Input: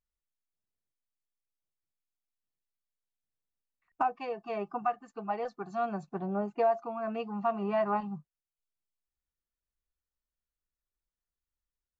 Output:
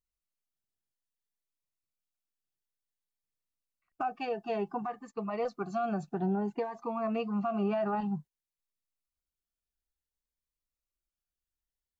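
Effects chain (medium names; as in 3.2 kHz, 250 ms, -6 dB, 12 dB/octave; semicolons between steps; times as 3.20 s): gate -51 dBFS, range -7 dB; peak limiter -27.5 dBFS, peak gain reduction 9 dB; Shepard-style phaser rising 0.56 Hz; trim +5.5 dB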